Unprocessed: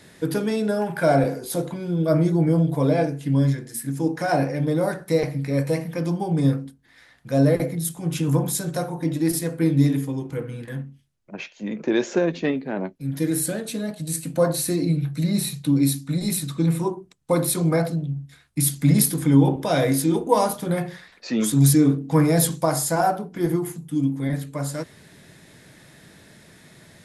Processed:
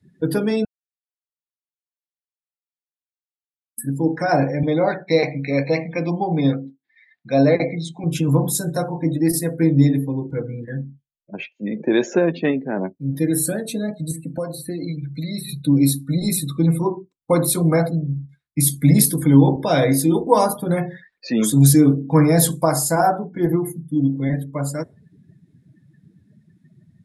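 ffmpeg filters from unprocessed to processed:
-filter_complex "[0:a]asettb=1/sr,asplit=3[s0][s1][s2];[s0]atrim=end=4.634[s3];[s1]atrim=start=4.63:end=8.04,asetpts=PTS-STARTPTS,afade=t=in:d=0.004:c=qsin,afade=t=out:st=3.406:d=0.004:c=qsin,highpass=170,equalizer=f=730:t=q:w=4:g=5,equalizer=f=2300:t=q:w=4:g=9,equalizer=f=4000:t=q:w=4:g=7,lowpass=f=6600:w=0.5412,lowpass=f=6600:w=1.3066[s4];[s2]atrim=start=8.036[s5];[s3][s4]acrossfade=d=0.004:c1=hsin:c2=qsin[s6];[s6][s5]acrossfade=d=0.004:c1=qsin:c2=hsin,asettb=1/sr,asplit=3[s7][s8][s9];[s7]atrim=end=14.114[s10];[s8]atrim=start=14.11:end=15.49,asetpts=PTS-STARTPTS,afade=t=in:d=0.004:c=qsin,afade=t=out:st=1.376:d=0.004:c=qsin,acrossover=split=800|3000[s11][s12][s13];[s11]acompressor=threshold=0.0316:ratio=4[s14];[s12]acompressor=threshold=0.00708:ratio=4[s15];[s13]acompressor=threshold=0.0126:ratio=4[s16];[s14][s15][s16]amix=inputs=3:normalize=0[s17];[s9]atrim=start=15.486[s18];[s10][s17]acrossfade=d=0.004:c1=hsin:c2=qsin[s19];[s19][s18]acrossfade=d=0.004:c1=qsin:c2=hsin,asplit=3[s20][s21][s22];[s20]atrim=end=0.65,asetpts=PTS-STARTPTS,afade=t=out:st=0.646:d=0.004:c=hsin[s23];[s21]atrim=start=0.65:end=3.78,asetpts=PTS-STARTPTS,volume=0[s24];[s22]atrim=start=3.78,asetpts=PTS-STARTPTS,afade=t=in:d=0.004:c=hsin[s25];[s23][s24][s25]concat=n=3:v=0:a=1,afftdn=nr=31:nf=-39,volume=1.5"

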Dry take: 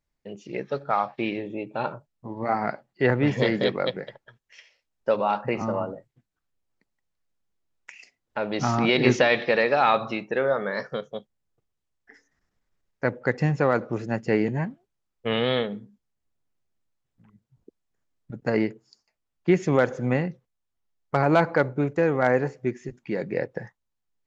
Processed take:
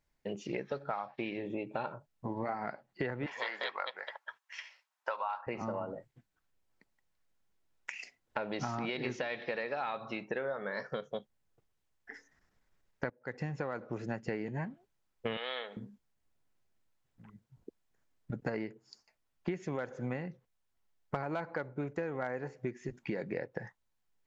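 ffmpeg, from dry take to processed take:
-filter_complex "[0:a]asettb=1/sr,asplit=3[s0][s1][s2];[s0]atrim=end=3.264[s3];[s1]atrim=start=3.26:end=5.47,asetpts=PTS-STARTPTS,afade=t=in:d=0.004:c=qsin,afade=t=out:st=2.206:d=0.004:c=qsin,highpass=f=1000:t=q:w=2.2[s4];[s2]atrim=start=5.466[s5];[s3][s4]acrossfade=d=0.004:c1=hsin:c2=qsin[s6];[s6][s5]acrossfade=d=0.004:c1=qsin:c2=hsin,asettb=1/sr,asplit=3[s7][s8][s9];[s7]atrim=end=15.374[s10];[s8]atrim=start=15.37:end=15.77,asetpts=PTS-STARTPTS,afade=t=in:d=0.004:c=qsin,afade=t=out:st=0.396:d=0.004:c=qsin,highpass=730[s11];[s9]atrim=start=15.766[s12];[s10][s11]acrossfade=d=0.004:c1=hsin:c2=qsin[s13];[s13][s12]acrossfade=d=0.004:c1=qsin:c2=hsin,asplit=2[s14][s15];[s14]atrim=end=13.1,asetpts=PTS-STARTPTS,afade=t=out:st=13.096:d=0.004:c=hsin:silence=0.112202[s16];[s15]atrim=start=13.1,asetpts=PTS-STARTPTS,afade=t=in:d=1.26:silence=0.112202[s17];[s16][s17]concat=n=2:v=0:a=1,equalizer=f=1300:w=0.6:g=3.5,bandreject=f=1200:w=17,acompressor=threshold=0.02:ratio=12,volume=1.12"

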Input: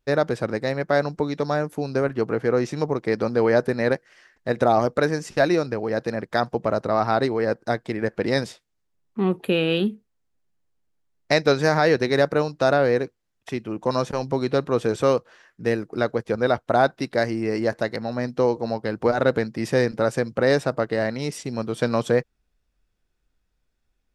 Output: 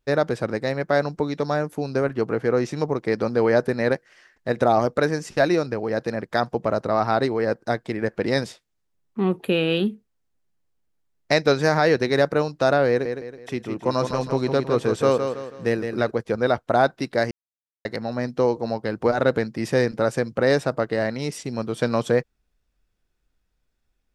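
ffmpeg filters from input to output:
-filter_complex "[0:a]asettb=1/sr,asplit=3[s0][s1][s2];[s0]atrim=end=12.894[s3];[s1]atrim=start=12.89:end=16.11,asetpts=PTS-STARTPTS,afade=t=in:d=0.004:c=qsin,afade=t=out:st=3.216:d=0.004:c=qsin,aecho=1:1:162|324|486|648|810:0.447|0.174|0.0679|0.0265|0.0103,atrim=end_sample=142002[s4];[s2]atrim=start=16.106[s5];[s3][s4]acrossfade=d=0.004:c1=hsin:c2=qsin[s6];[s6][s5]acrossfade=d=0.004:c1=qsin:c2=hsin,asplit=3[s7][s8][s9];[s7]atrim=end=17.31,asetpts=PTS-STARTPTS,afade=t=out:st=17.306:d=0.004:c=hsin[s10];[s8]atrim=start=17.31:end=17.85,asetpts=PTS-STARTPTS,volume=0[s11];[s9]atrim=start=17.85,asetpts=PTS-STARTPTS,afade=t=in:d=0.004:c=hsin[s12];[s10][s11][s12]concat=n=3:v=0:a=1"

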